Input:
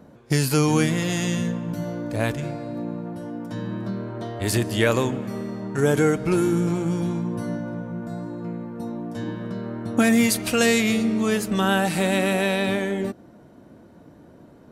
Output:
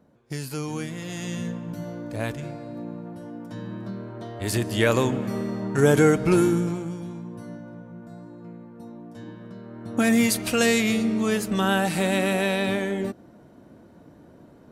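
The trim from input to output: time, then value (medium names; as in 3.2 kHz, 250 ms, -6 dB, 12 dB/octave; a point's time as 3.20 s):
0.92 s -11.5 dB
1.47 s -5 dB
4.25 s -5 dB
5.24 s +2 dB
6.41 s +2 dB
6.99 s -10 dB
9.68 s -10 dB
10.10 s -1.5 dB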